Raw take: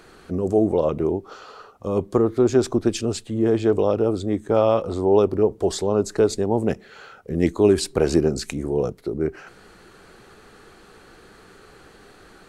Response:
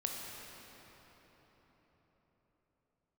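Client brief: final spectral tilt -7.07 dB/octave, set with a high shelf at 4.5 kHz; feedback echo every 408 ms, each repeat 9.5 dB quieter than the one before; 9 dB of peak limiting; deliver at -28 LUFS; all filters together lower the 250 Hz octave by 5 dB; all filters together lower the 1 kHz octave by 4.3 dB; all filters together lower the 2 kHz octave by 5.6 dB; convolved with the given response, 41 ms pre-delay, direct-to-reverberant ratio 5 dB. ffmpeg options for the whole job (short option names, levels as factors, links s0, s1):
-filter_complex "[0:a]equalizer=f=250:t=o:g=-7,equalizer=f=1000:t=o:g=-4,equalizer=f=2000:t=o:g=-4.5,highshelf=f=4500:g=-8,alimiter=limit=0.158:level=0:latency=1,aecho=1:1:408|816|1224|1632:0.335|0.111|0.0365|0.012,asplit=2[s0][s1];[1:a]atrim=start_sample=2205,adelay=41[s2];[s1][s2]afir=irnorm=-1:irlink=0,volume=0.447[s3];[s0][s3]amix=inputs=2:normalize=0,volume=0.841"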